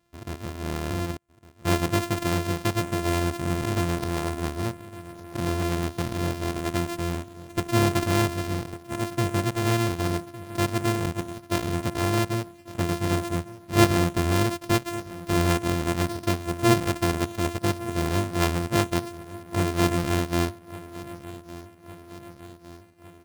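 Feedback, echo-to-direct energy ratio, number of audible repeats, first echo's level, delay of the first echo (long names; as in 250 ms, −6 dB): 59%, −15.5 dB, 4, −17.5 dB, 1,158 ms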